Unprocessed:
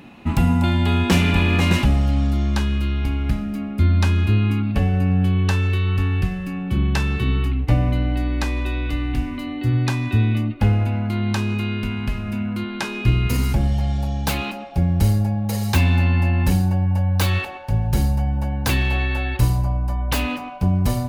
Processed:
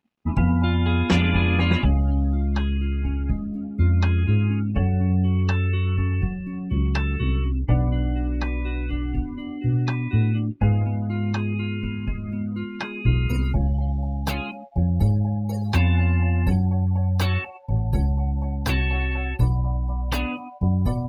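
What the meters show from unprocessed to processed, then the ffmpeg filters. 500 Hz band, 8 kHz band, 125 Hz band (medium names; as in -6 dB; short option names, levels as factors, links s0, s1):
-3.0 dB, under -10 dB, -2.5 dB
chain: -af "aeval=exprs='sgn(val(0))*max(abs(val(0))-0.00631,0)':c=same,afftdn=nr=26:nf=-30,volume=0.794"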